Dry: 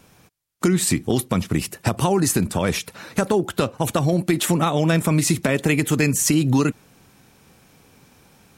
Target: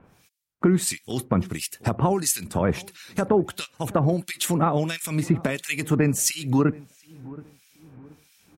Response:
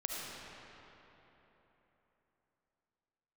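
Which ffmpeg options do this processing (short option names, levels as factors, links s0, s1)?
-filter_complex "[0:a]asplit=2[s0][s1];[s1]adelay=727,lowpass=f=890:p=1,volume=0.1,asplit=2[s2][s3];[s3]adelay=727,lowpass=f=890:p=1,volume=0.44,asplit=2[s4][s5];[s5]adelay=727,lowpass=f=890:p=1,volume=0.44[s6];[s0][s2][s4][s6]amix=inputs=4:normalize=0,acrossover=split=1900[s7][s8];[s7]aeval=exprs='val(0)*(1-1/2+1/2*cos(2*PI*1.5*n/s))':c=same[s9];[s8]aeval=exprs='val(0)*(1-1/2-1/2*cos(2*PI*1.5*n/s))':c=same[s10];[s9][s10]amix=inputs=2:normalize=0"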